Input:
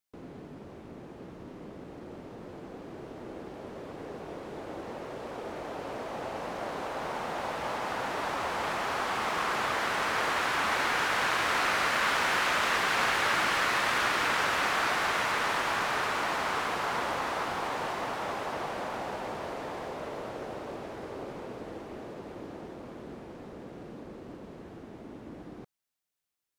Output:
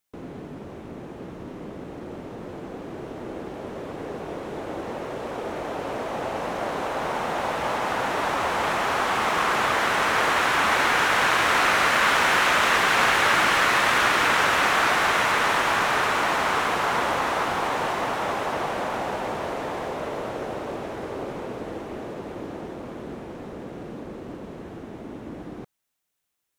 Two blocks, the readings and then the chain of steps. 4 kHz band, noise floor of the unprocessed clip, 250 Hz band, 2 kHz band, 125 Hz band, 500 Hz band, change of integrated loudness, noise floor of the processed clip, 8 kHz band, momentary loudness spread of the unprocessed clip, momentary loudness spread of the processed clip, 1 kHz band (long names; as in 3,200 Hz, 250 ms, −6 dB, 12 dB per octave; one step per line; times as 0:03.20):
+6.5 dB, −47 dBFS, +7.5 dB, +7.5 dB, +7.5 dB, +7.5 dB, +7.5 dB, −40 dBFS, +7.0 dB, 19 LU, 19 LU, +7.5 dB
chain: parametric band 4,700 Hz −3.5 dB 0.35 octaves
level +7.5 dB